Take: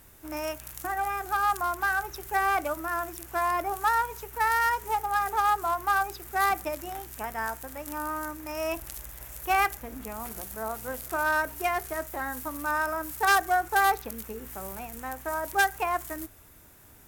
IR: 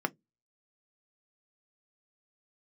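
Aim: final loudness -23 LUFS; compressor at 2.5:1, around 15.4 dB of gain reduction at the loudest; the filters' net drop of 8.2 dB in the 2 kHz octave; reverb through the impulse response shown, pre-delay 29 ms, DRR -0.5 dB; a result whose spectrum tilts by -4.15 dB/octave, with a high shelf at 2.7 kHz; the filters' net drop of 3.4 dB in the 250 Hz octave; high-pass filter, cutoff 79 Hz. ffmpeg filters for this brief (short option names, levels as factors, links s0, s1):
-filter_complex "[0:a]highpass=79,equalizer=f=250:t=o:g=-4.5,equalizer=f=2000:t=o:g=-8.5,highshelf=f=2700:g=-8,acompressor=threshold=0.00447:ratio=2.5,asplit=2[s0][s1];[1:a]atrim=start_sample=2205,adelay=29[s2];[s1][s2]afir=irnorm=-1:irlink=0,volume=0.473[s3];[s0][s3]amix=inputs=2:normalize=0,volume=8.41"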